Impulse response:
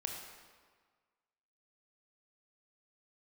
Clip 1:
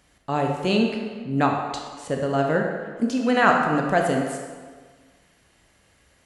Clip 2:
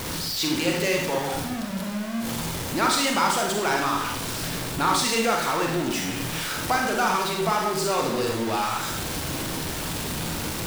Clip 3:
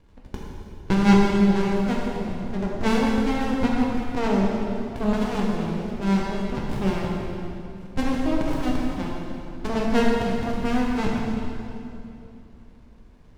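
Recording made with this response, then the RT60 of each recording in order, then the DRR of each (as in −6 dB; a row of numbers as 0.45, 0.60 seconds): 1; 1.6, 0.65, 2.8 seconds; 1.0, 0.0, −3.5 decibels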